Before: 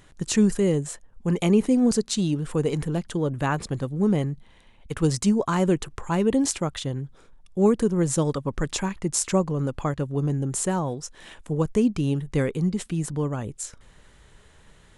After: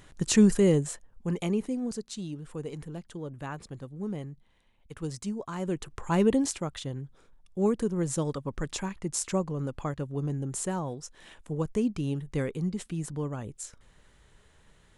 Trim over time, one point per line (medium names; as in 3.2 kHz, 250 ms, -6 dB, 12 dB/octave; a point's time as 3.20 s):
0.74 s 0 dB
1.87 s -13 dB
5.52 s -13 dB
6.23 s 0 dB
6.50 s -6.5 dB